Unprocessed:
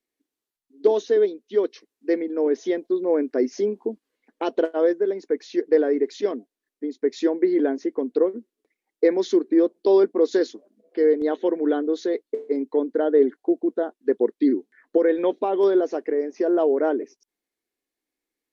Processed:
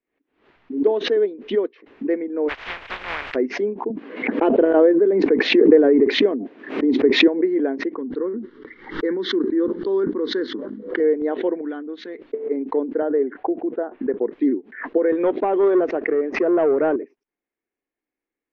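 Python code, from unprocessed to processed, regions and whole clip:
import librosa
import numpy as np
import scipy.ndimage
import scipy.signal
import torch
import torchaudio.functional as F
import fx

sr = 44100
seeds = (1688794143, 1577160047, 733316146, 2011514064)

y = fx.spec_flatten(x, sr, power=0.14, at=(2.48, 3.34), fade=0.02)
y = fx.peak_eq(y, sr, hz=220.0, db=-14.5, octaves=2.6, at=(2.48, 3.34), fade=0.02)
y = fx.chain(y, sr, fx.highpass(hz=190.0, slope=24),
    fx.low_shelf(hz=370.0, db=11.0),
    fx.pre_swell(db_per_s=24.0), at=(3.9, 7.28))
y = fx.chain(y, sr, fx.fixed_phaser(hz=2500.0, stages=6),
    fx.sustainer(db_per_s=36.0), at=(7.96, 11.0))
y = fx.chain(y, sr, fx.peak_eq(hz=530.0, db=-11.5, octaves=1.7),
    fx.notch(hz=380.0, q=6.4), at=(11.61, 12.22))
y = fx.chain(y, sr, fx.lowpass(hz=2300.0, slope=12),
    fx.low_shelf(hz=410.0, db=-5.0),
    fx.band_squash(depth_pct=40), at=(13.02, 14.26))
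y = fx.chain(y, sr, fx.highpass(hz=150.0, slope=24),
    fx.leveller(passes=1), at=(15.12, 16.96))
y = scipy.signal.sosfilt(scipy.signal.butter(4, 2500.0, 'lowpass', fs=sr, output='sos'), y)
y = fx.pre_swell(y, sr, db_per_s=110.0)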